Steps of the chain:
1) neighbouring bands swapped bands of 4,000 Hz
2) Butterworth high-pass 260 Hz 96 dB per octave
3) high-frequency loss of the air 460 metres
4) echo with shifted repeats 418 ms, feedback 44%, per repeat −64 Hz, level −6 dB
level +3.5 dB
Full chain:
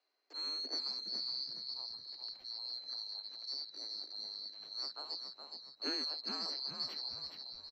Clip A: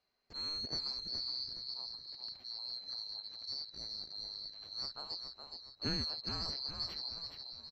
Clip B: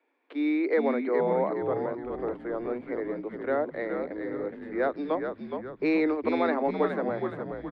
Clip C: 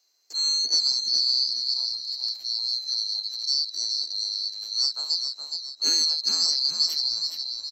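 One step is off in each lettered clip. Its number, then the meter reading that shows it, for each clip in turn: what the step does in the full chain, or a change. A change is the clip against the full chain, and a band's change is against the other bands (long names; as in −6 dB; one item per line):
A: 2, 250 Hz band +3.5 dB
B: 1, 500 Hz band +8.5 dB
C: 3, change in crest factor −3.0 dB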